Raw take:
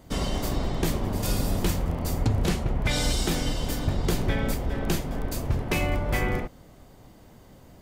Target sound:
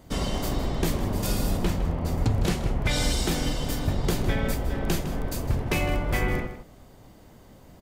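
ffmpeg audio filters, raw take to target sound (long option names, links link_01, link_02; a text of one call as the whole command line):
ffmpeg -i in.wav -filter_complex "[0:a]asettb=1/sr,asplit=3[link_01][link_02][link_03];[link_01]atrim=end=1.574[link_04];[link_02]atrim=start=1.57:end=2.18,asetpts=PTS-STARTPTS,afade=type=in:duration=0.004:curve=qsin,afade=type=out:start_time=0.606:duration=0.004:curve=qsin,highshelf=frequency=5300:gain=-11[link_05];[link_03]atrim=start=2.176[link_06];[link_04][link_05]acrossfade=duration=0.004:curve1=hsin:curve2=qsin[link_07];[link_07][link_06]acrossfade=duration=0.004:curve1=qsin:curve2=hsin,asplit=2[link_08][link_09];[link_09]adelay=157.4,volume=-11dB,highshelf=frequency=4000:gain=-3.54[link_10];[link_08][link_10]amix=inputs=2:normalize=0" out.wav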